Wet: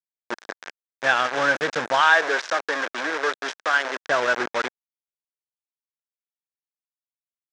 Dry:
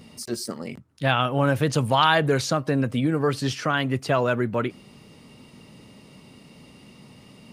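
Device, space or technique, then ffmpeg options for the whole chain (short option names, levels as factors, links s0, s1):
hand-held game console: -filter_complex "[0:a]acrusher=bits=3:mix=0:aa=0.000001,highpass=430,equalizer=f=1600:t=q:w=4:g=9,equalizer=f=2900:t=q:w=4:g=-4,equalizer=f=4400:t=q:w=4:g=-6,lowpass=f=5600:w=0.5412,lowpass=f=5600:w=1.3066,asettb=1/sr,asplit=3[s0][s1][s2];[s0]atrim=end=2.014[s3];[s1]atrim=start=2.01:end=4.08,asetpts=PTS-STARTPTS,afade=t=in:d=0.004:c=qsin,afade=t=out:st=2.066:d=0.004:c=qsin,highpass=380[s4];[s2]atrim=start=4.076[s5];[s3][s4]acrossfade=d=0.004:c1=hsin:c2=qsin[s6];[s6][s5]acrossfade=d=0.004:c1=qsin:c2=hsin"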